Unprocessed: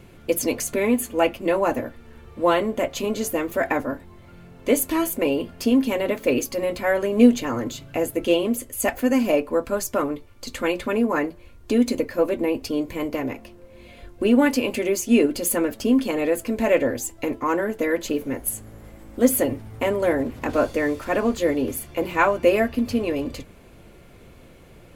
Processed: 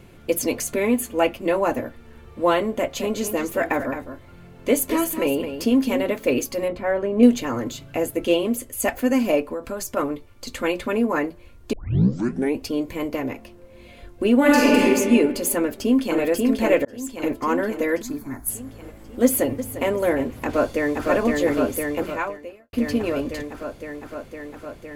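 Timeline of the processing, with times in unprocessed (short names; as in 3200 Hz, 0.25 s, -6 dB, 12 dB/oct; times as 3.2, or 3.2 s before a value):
2.78–6.04 echo 0.215 s -9.5 dB
6.68–7.23 LPF 1200 Hz 6 dB/oct
9.52–9.97 compressor 5:1, threshold -25 dBFS
11.73 tape start 0.86 s
14.39–14.82 reverb throw, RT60 1.9 s, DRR -6.5 dB
15.57–16.2 echo throw 0.54 s, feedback 60%, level -2 dB
16.85–17.29 fade in
18.02–18.49 fixed phaser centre 1200 Hz, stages 4
19.23–19.91 echo throw 0.35 s, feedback 35%, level -12.5 dB
20.44–21.08 echo throw 0.51 s, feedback 80%, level -2 dB
21.91–22.73 fade out quadratic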